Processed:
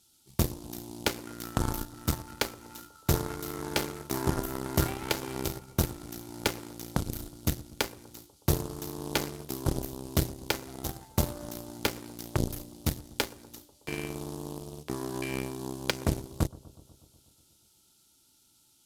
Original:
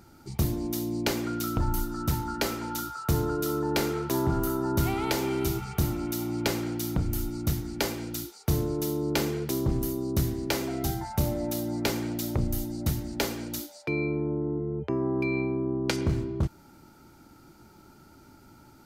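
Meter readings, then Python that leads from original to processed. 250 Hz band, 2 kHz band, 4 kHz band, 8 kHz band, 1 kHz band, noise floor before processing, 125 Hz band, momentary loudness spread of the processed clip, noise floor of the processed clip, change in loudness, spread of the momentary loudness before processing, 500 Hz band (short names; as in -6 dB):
-6.5 dB, -1.5 dB, 0.0 dB, -0.5 dB, -3.5 dB, -54 dBFS, -4.0 dB, 10 LU, -65 dBFS, -4.0 dB, 4 LU, -5.5 dB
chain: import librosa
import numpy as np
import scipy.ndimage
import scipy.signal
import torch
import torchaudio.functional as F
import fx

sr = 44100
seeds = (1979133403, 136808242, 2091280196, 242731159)

y = fx.dmg_noise_band(x, sr, seeds[0], low_hz=3100.0, high_hz=13000.0, level_db=-44.0)
y = fx.cheby_harmonics(y, sr, harmonics=(3,), levels_db=(-10,), full_scale_db=-15.0)
y = fx.echo_bbd(y, sr, ms=122, stages=1024, feedback_pct=70, wet_db=-21)
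y = y * 10.0 ** (3.5 / 20.0)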